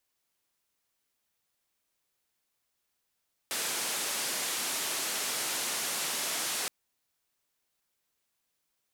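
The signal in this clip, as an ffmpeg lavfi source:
-f lavfi -i "anoisesrc=c=white:d=3.17:r=44100:seed=1,highpass=f=230,lowpass=f=11000,volume=-25.1dB"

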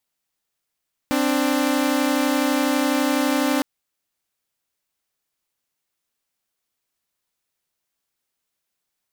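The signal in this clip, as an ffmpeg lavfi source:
-f lavfi -i "aevalsrc='0.119*((2*mod(261.63*t,1)-1)+(2*mod(293.66*t,1)-1))':d=2.51:s=44100"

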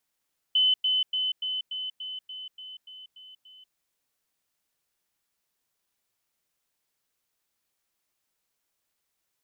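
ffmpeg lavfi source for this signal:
-f lavfi -i "aevalsrc='pow(10,(-18.5-3*floor(t/0.29))/20)*sin(2*PI*3030*t)*clip(min(mod(t,0.29),0.19-mod(t,0.29))/0.005,0,1)':d=3.19:s=44100"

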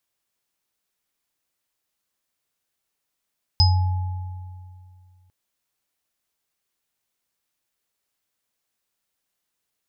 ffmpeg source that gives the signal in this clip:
-f lavfi -i "aevalsrc='0.237*pow(10,-3*t/2.36)*sin(2*PI*91*t)+0.0531*pow(10,-3*t/2.03)*sin(2*PI*850*t)+0.224*pow(10,-3*t/0.3)*sin(2*PI*5050*t)':d=1.7:s=44100"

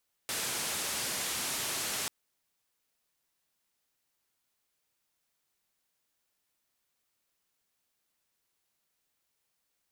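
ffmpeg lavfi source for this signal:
-f lavfi -i "anoisesrc=c=white:d=1.79:r=44100:seed=1,highpass=f=84,lowpass=f=11000,volume=-26.7dB"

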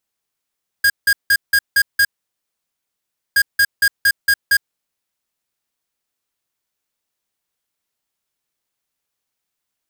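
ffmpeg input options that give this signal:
-f lavfi -i "aevalsrc='0.237*(2*lt(mod(1630*t,1),0.5)-1)*clip(min(mod(mod(t,2.52),0.23),0.06-mod(mod(t,2.52),0.23))/0.005,0,1)*lt(mod(t,2.52),1.38)':d=5.04:s=44100"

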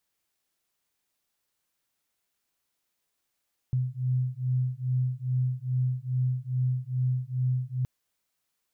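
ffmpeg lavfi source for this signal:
-f lavfi -i "aevalsrc='0.0398*(sin(2*PI*126*t)+sin(2*PI*128.4*t))':d=4.12:s=44100"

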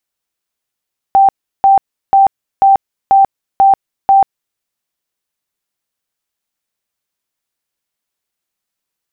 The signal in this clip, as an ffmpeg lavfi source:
-f lavfi -i "aevalsrc='0.631*sin(2*PI*783*mod(t,0.49))*lt(mod(t,0.49),108/783)':d=3.43:s=44100"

